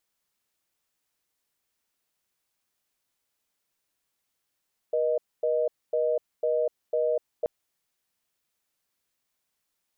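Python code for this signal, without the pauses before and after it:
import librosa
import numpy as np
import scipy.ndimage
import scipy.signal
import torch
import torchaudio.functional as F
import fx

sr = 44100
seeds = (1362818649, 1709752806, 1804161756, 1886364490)

y = fx.call_progress(sr, length_s=2.53, kind='reorder tone', level_db=-25.0)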